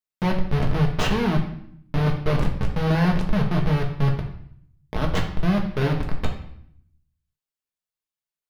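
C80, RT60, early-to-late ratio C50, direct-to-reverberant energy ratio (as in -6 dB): 10.5 dB, 0.65 s, 7.5 dB, 0.5 dB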